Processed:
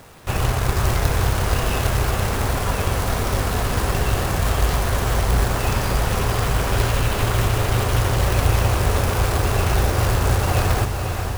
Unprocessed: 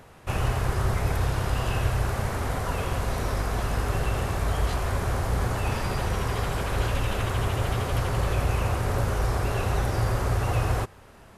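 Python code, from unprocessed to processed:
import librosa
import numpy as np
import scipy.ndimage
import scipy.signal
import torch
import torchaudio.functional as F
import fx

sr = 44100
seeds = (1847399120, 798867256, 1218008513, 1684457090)

y = fx.quant_companded(x, sr, bits=4)
y = fx.echo_diffused(y, sr, ms=498, feedback_pct=56, wet_db=-6)
y = F.gain(torch.from_numpy(y), 4.5).numpy()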